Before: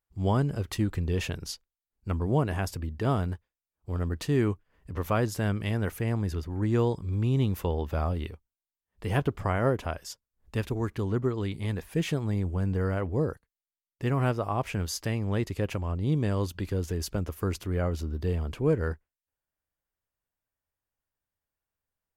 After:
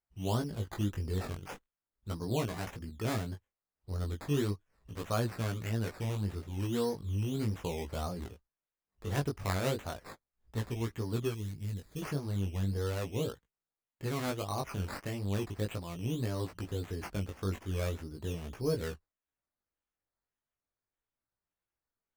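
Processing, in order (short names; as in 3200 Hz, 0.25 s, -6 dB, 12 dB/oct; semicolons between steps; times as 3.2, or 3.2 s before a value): decimation with a swept rate 12×, swing 60% 1.7 Hz; chorus 0.37 Hz, delay 17 ms, depth 4.1 ms; 11.34–12.02 bell 940 Hz -13.5 dB 2.9 oct; gain -3.5 dB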